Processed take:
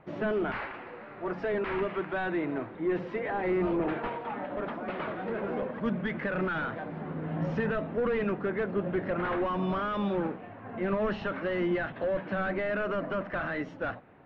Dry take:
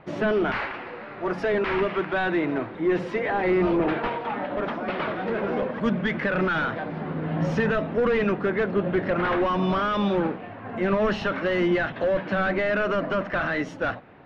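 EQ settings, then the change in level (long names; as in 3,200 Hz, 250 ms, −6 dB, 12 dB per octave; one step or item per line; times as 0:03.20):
high-frequency loss of the air 92 metres
high-shelf EQ 4,700 Hz −8 dB
−6.0 dB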